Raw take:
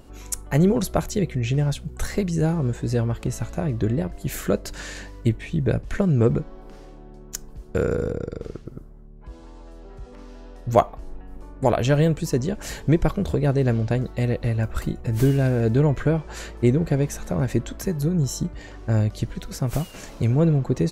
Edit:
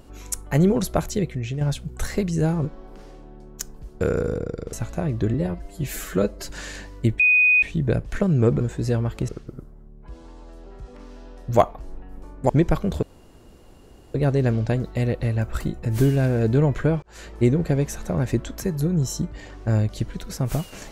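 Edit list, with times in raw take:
1.13–1.61 fade out linear, to -8 dB
2.65–3.33 swap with 6.39–8.47
3.94–4.71 stretch 1.5×
5.41 add tone 2490 Hz -13 dBFS 0.43 s
11.68–12.83 cut
13.36 insert room tone 1.12 s
16.24–16.58 fade in

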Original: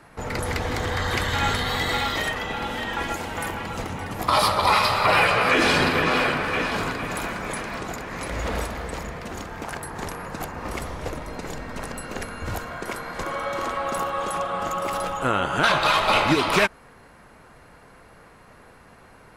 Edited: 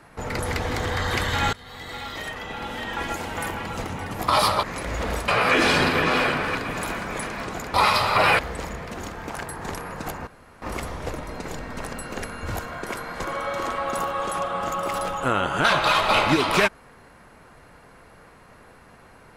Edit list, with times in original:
1.53–3.27 fade in, from -23.5 dB
4.63–5.28 swap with 8.08–8.73
6.55–6.89 cut
10.61 insert room tone 0.35 s

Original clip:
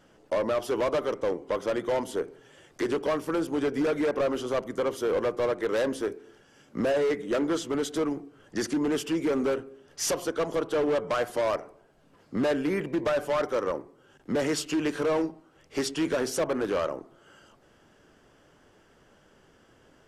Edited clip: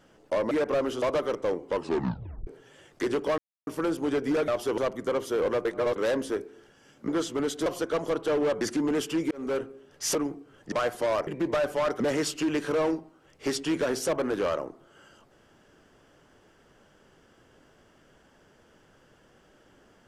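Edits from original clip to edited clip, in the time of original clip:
0.51–0.81 swap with 3.98–4.49
1.5 tape stop 0.76 s
3.17 insert silence 0.29 s
5.36–5.67 reverse
6.79–7.43 cut
8.01–8.58 swap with 10.12–11.07
9.28–9.56 fade in
11.62–12.8 cut
13.53–14.31 cut

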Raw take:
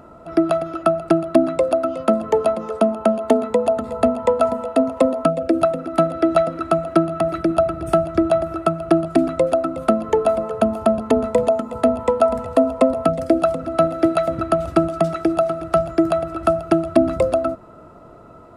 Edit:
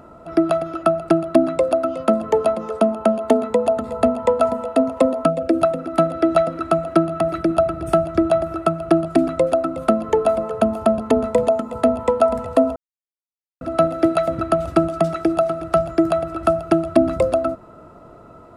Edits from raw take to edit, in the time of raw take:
12.76–13.61 mute

